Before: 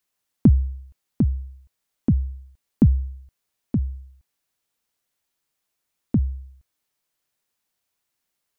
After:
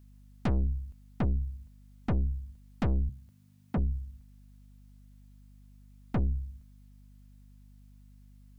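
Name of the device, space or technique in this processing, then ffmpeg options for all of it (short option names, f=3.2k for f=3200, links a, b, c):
valve amplifier with mains hum: -filter_complex "[0:a]aeval=exprs='(tanh(31.6*val(0)+0.5)-tanh(0.5))/31.6':c=same,aeval=exprs='val(0)+0.00126*(sin(2*PI*50*n/s)+sin(2*PI*2*50*n/s)/2+sin(2*PI*3*50*n/s)/3+sin(2*PI*4*50*n/s)/4+sin(2*PI*5*50*n/s)/5)':c=same,asettb=1/sr,asplit=3[a][b][c];[a]atrim=end=3.094[d];[b]atrim=start=3.09:end=3.78,asetpts=PTS-STARTPTS,afade=t=in:d=0.004:c=qsin,afade=t=out:st=0.686:d=0.004:c=qsin,highpass=f=92:w=0.5412,highpass=f=92:w=1.3066[e];[c]atrim=start=3.776[f];[d][e]acrossfade=d=0.004:c1=hsin:c2=qsin[g];[g][f]acrossfade=d=0.004:c1=qsin:c2=hsin,volume=4.5dB"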